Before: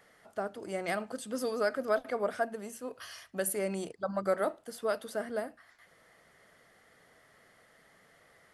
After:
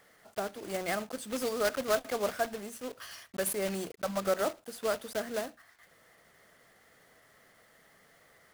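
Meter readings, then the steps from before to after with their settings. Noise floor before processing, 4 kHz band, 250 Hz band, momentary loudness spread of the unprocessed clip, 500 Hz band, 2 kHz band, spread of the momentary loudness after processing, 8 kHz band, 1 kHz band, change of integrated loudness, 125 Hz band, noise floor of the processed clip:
-63 dBFS, +6.0 dB, 0.0 dB, 11 LU, 0.0 dB, +1.0 dB, 11 LU, +3.0 dB, +0.5 dB, +0.5 dB, +0.5 dB, -63 dBFS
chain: block-companded coder 3-bit

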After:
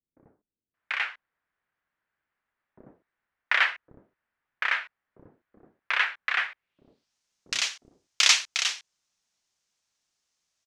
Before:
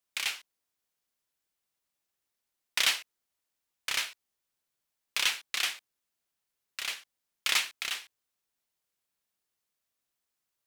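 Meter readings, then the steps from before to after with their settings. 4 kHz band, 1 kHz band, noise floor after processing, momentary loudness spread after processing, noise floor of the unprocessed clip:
+3.0 dB, +8.5 dB, under -85 dBFS, 13 LU, -85 dBFS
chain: bands offset in time lows, highs 740 ms, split 390 Hz; low-pass sweep 1.7 kHz -> 6.2 kHz, 6.49–7.14 s; trim +5 dB

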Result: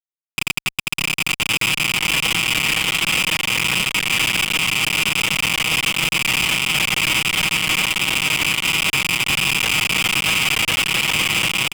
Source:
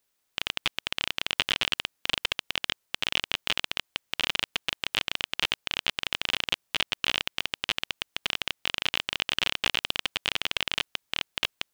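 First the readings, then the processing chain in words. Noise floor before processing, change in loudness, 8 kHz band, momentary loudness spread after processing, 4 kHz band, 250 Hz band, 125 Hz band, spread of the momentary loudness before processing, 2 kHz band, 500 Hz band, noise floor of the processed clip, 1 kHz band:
-77 dBFS, +12.0 dB, +19.5 dB, 3 LU, +9.0 dB, +15.5 dB, +18.5 dB, 4 LU, +14.0 dB, +9.0 dB, under -85 dBFS, +11.5 dB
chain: rattle on loud lows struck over -47 dBFS, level -13 dBFS; high-pass 100 Hz 6 dB/octave; treble shelf 2.3 kHz -5.5 dB; comb 6.3 ms, depth 30%; compressor with a negative ratio -33 dBFS, ratio -0.5; saturation -24.5 dBFS, distortion -8 dB; low-pass 4.3 kHz 24 dB/octave; band-stop 600 Hz, Q 20; bouncing-ball echo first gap 630 ms, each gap 0.65×, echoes 5; fuzz box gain 59 dB, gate -59 dBFS; vibrato 1.4 Hz 18 cents; trim -2.5 dB

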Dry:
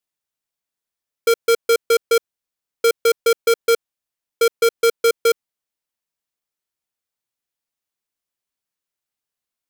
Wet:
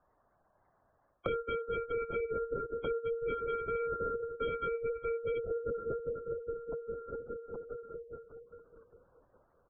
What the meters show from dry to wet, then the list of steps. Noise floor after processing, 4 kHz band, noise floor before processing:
-73 dBFS, -28.0 dB, under -85 dBFS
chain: backward echo that repeats 204 ms, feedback 67%, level -11 dB; Gaussian low-pass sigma 8.2 samples; comb 6.6 ms, depth 99%; hard clipper -15.5 dBFS, distortion -9 dB; harmonic-percussive split percussive -4 dB; high-pass 510 Hz 12 dB/octave; on a send: feedback delay 67 ms, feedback 22%, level -8 dB; on the sum: LPC vocoder at 8 kHz whisper; reverse; compression 12:1, threshold -32 dBFS, peak gain reduction 16 dB; reverse; spectral gate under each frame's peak -25 dB strong; three bands compressed up and down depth 100%

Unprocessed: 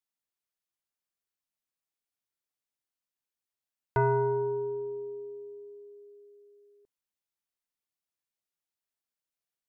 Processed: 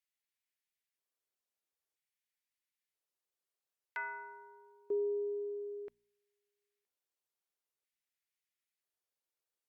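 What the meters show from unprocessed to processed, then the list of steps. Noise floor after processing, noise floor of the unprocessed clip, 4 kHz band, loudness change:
under -85 dBFS, under -85 dBFS, no reading, -8.5 dB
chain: LFO high-pass square 0.51 Hz 400–2000 Hz; de-hum 59.07 Hz, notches 4; trim -3.5 dB; Opus 64 kbps 48 kHz

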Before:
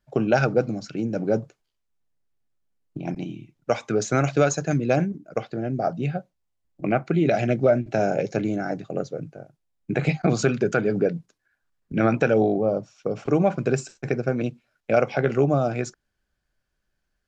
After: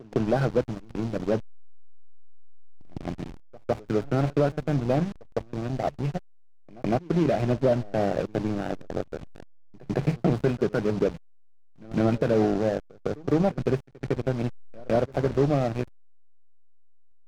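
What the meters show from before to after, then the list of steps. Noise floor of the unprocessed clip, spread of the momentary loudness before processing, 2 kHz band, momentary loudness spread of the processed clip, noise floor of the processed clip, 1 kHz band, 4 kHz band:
-77 dBFS, 11 LU, -8.5 dB, 12 LU, -49 dBFS, -4.0 dB, -2.5 dB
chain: one-bit delta coder 32 kbps, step -35 dBFS; in parallel at -1 dB: compression 6:1, threshold -35 dBFS, peak gain reduction 18 dB; on the sum: hysteresis with a dead band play -19.5 dBFS; pre-echo 157 ms -23 dB; trim -2 dB

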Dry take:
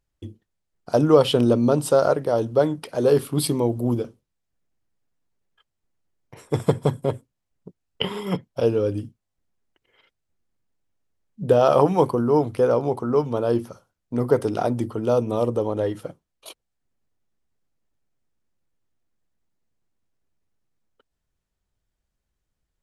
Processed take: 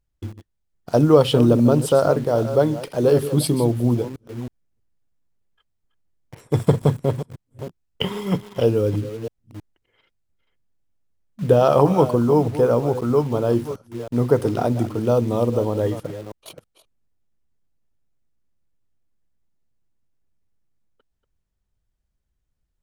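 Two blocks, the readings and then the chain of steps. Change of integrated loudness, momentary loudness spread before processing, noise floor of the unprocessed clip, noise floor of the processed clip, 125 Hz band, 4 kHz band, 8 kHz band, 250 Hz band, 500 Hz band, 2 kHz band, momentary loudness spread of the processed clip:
+2.0 dB, 12 LU, -80 dBFS, -75 dBFS, +5.5 dB, +0.5 dB, no reading, +3.0 dB, +1.5 dB, +1.0 dB, 19 LU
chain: chunks repeated in reverse 320 ms, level -12 dB; bass shelf 180 Hz +8 dB; in parallel at -5.5 dB: bit crusher 6-bit; on the sum: trim -3.5 dB

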